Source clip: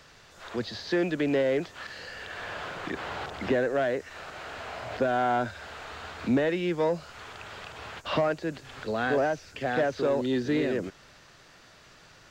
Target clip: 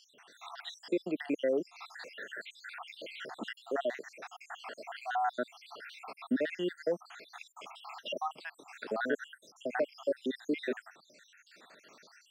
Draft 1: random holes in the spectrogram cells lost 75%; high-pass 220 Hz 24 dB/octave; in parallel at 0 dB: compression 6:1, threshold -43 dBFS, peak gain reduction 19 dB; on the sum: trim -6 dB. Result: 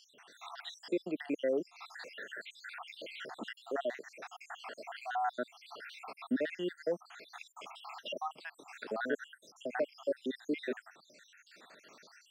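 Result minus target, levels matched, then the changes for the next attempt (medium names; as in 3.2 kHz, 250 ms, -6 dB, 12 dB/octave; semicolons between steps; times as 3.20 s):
compression: peak gain reduction +9.5 dB
change: compression 6:1, threshold -31.5 dBFS, peak gain reduction 9.5 dB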